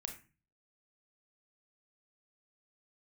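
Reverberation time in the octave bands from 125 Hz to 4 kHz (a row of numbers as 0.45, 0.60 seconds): 0.60, 0.50, 0.35, 0.30, 0.35, 0.25 seconds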